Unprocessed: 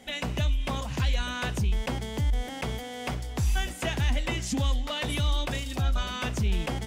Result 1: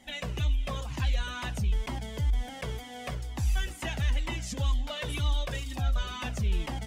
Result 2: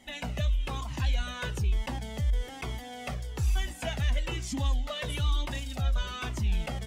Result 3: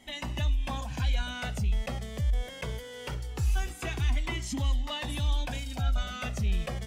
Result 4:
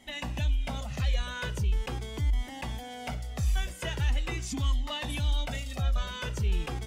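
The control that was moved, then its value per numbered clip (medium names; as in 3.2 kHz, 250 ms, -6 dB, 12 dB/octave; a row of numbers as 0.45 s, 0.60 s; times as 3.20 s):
Shepard-style flanger, rate: 2.1 Hz, 1.1 Hz, 0.22 Hz, 0.42 Hz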